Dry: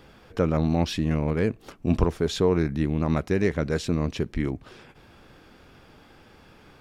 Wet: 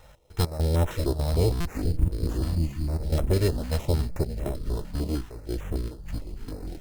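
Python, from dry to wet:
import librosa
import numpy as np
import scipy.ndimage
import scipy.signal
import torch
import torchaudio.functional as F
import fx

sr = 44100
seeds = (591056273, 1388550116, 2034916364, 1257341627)

y = fx.lower_of_two(x, sr, delay_ms=2.2)
y = fx.low_shelf(y, sr, hz=190.0, db=7.0)
y = fx.step_gate(y, sr, bpm=101, pattern='x.x.xxx.xxx.x', floor_db=-12.0, edge_ms=4.5)
y = fx.peak_eq(y, sr, hz=610.0, db=11.5, octaves=0.4)
y = y + 10.0 ** (-16.5 / 20.0) * np.pad(y, (int(574 * sr / 1000.0), 0))[:len(y)]
y = fx.spec_box(y, sr, start_s=1.53, length_s=1.36, low_hz=330.0, high_hz=6000.0, gain_db=-21)
y = fx.echo_pitch(y, sr, ms=530, semitones=-5, count=3, db_per_echo=-6.0)
y = fx.sample_hold(y, sr, seeds[0], rate_hz=4600.0, jitter_pct=0)
y = fx.buffer_glitch(y, sr, at_s=(1.6, 4.11), block=256, repeats=8)
y = fx.filter_held_notch(y, sr, hz=6.6, low_hz=380.0, high_hz=4600.0)
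y = y * 10.0 ** (-2.0 / 20.0)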